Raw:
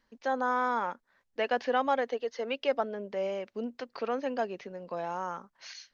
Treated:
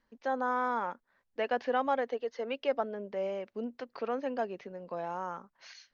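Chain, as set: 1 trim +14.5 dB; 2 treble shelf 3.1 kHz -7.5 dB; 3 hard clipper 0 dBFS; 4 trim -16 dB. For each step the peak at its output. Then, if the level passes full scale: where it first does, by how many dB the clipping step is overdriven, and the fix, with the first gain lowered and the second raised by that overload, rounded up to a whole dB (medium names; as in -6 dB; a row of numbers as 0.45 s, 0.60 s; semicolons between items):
-1.0 dBFS, -1.5 dBFS, -1.5 dBFS, -17.5 dBFS; nothing clips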